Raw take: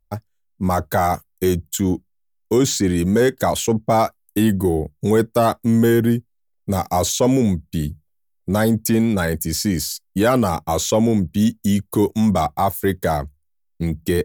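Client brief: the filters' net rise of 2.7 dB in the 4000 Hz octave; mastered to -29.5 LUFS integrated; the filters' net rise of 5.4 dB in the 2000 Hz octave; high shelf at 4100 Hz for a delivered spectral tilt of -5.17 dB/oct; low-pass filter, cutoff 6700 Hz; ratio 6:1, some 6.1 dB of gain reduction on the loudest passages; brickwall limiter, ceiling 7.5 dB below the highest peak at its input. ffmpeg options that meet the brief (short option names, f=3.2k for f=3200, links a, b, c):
-af "lowpass=6.7k,equalizer=f=2k:t=o:g=7,equalizer=f=4k:t=o:g=4.5,highshelf=f=4.1k:g=-4.5,acompressor=threshold=-18dB:ratio=6,volume=-4.5dB,alimiter=limit=-18.5dB:level=0:latency=1"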